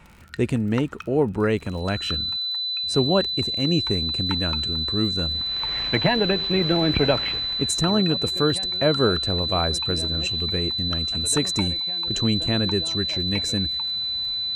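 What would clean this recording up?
click removal
notch filter 4,000 Hz, Q 30

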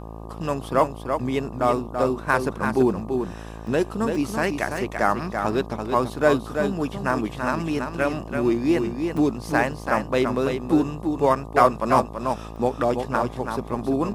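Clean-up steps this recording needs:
hum removal 55.1 Hz, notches 22
repair the gap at 0:03.67/0:04.15/0:04.77/0:09.17/0:09.72/0:12.56, 2.2 ms
echo removal 335 ms −6 dB

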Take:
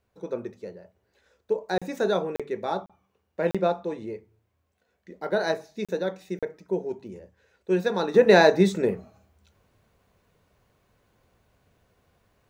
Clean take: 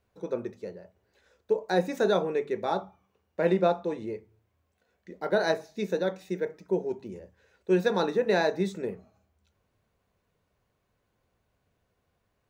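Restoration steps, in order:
repair the gap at 0:01.78/0:02.36/0:02.86/0:03.51/0:05.85/0:06.39, 36 ms
level 0 dB, from 0:08.14 −9 dB

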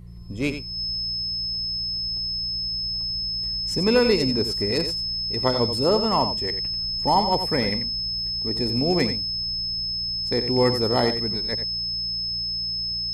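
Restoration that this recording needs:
hum removal 58.3 Hz, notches 3
notch filter 5,200 Hz, Q 30
echo removal 89 ms −9.5 dB

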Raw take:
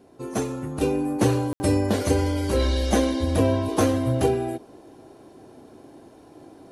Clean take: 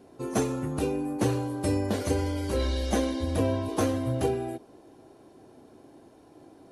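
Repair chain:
ambience match 0:01.53–0:01.60
level correction −5.5 dB, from 0:00.81

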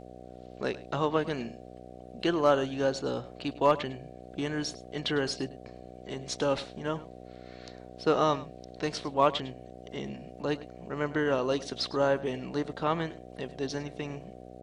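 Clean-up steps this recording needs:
clipped peaks rebuilt −12 dBFS
hum removal 61.8 Hz, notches 12
echo removal 103 ms −18 dB

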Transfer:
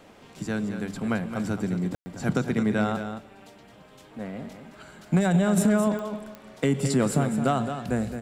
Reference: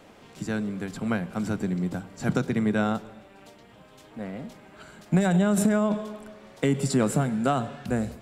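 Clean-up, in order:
clipped peaks rebuilt −13.5 dBFS
click removal
ambience match 0:01.95–0:02.06
echo removal 217 ms −9 dB

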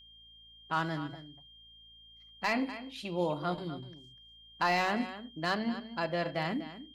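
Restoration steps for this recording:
clipped peaks rebuilt −19.5 dBFS
hum removal 55.8 Hz, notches 5
notch filter 3,200 Hz, Q 30
echo removal 246 ms −13.5 dB

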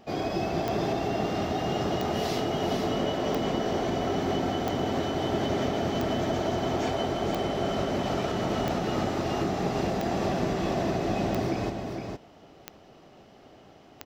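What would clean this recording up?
click removal
echo removal 462 ms −5.5 dB

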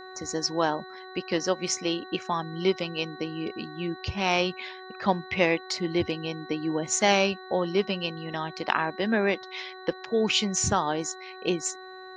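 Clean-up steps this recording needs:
hum removal 373.6 Hz, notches 5
notch filter 4,000 Hz, Q 30

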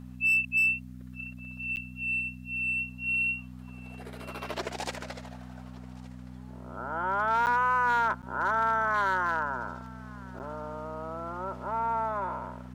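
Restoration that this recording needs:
clipped peaks rebuilt −20.5 dBFS
hum removal 62.5 Hz, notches 4
repair the gap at 0:01.76/0:07.46/0:08.22/0:10.39, 9.4 ms
echo removal 1,168 ms −23 dB

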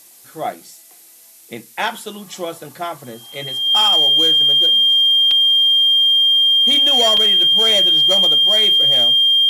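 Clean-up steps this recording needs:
clipped peaks rebuilt −9.5 dBFS
notch filter 3,200 Hz, Q 30
repair the gap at 0:03.32/0:05.31/0:07.17, 3.6 ms
noise reduction from a noise print 18 dB

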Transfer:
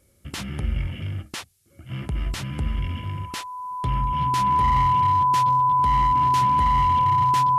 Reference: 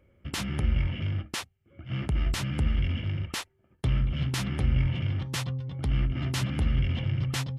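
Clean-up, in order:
clipped peaks rebuilt −14.5 dBFS
notch filter 1,000 Hz, Q 30
downward expander −34 dBFS, range −21 dB

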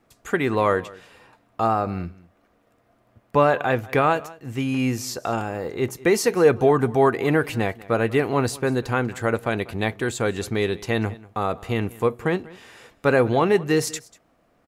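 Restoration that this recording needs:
echo removal 192 ms −21 dB

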